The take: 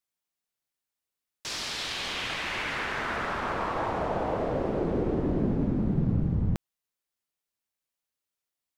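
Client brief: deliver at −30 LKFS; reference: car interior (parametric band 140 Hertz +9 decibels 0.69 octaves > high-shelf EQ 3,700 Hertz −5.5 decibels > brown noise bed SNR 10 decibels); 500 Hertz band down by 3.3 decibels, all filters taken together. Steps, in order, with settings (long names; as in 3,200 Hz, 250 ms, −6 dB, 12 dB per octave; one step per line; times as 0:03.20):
parametric band 140 Hz +9 dB 0.69 octaves
parametric band 500 Hz −4.5 dB
high-shelf EQ 3,700 Hz −5.5 dB
brown noise bed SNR 10 dB
level −2.5 dB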